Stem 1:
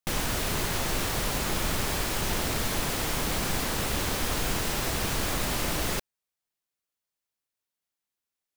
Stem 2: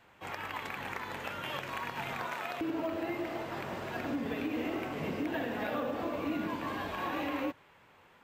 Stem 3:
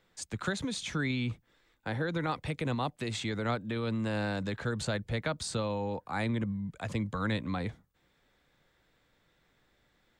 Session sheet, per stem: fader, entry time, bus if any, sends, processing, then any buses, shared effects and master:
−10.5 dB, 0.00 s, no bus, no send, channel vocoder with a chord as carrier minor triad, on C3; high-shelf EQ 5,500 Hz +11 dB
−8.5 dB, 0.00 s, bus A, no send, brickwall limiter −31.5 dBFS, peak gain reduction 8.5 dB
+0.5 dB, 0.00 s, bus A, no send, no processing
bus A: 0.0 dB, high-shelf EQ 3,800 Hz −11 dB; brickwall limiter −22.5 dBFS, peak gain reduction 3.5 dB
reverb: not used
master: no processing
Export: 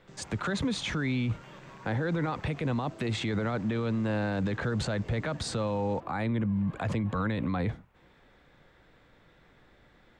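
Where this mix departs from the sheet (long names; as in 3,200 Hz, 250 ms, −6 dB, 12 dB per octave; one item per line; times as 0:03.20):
stem 1 −10.5 dB → −21.0 dB
stem 3 +0.5 dB → +11.5 dB
master: extra high-shelf EQ 6,200 Hz −4.5 dB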